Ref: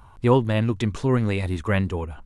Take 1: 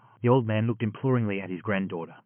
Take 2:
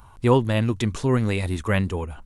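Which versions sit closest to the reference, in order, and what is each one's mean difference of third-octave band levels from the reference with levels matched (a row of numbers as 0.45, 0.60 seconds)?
2, 1; 1.0, 3.5 decibels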